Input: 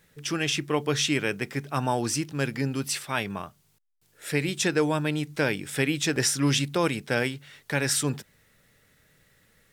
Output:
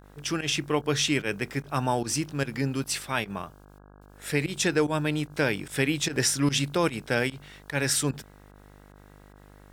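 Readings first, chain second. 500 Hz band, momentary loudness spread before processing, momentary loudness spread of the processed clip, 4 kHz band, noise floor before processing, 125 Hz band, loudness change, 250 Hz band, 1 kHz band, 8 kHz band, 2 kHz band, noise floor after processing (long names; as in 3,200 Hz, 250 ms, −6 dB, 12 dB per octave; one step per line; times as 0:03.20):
−0.5 dB, 8 LU, 8 LU, −0.5 dB, −65 dBFS, −0.5 dB, −0.5 dB, −0.5 dB, 0.0 dB, 0.0 dB, −0.5 dB, −52 dBFS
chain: fake sidechain pumping 148 BPM, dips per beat 1, −18 dB, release 104 ms
hum with harmonics 50 Hz, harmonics 33, −52 dBFS −4 dB per octave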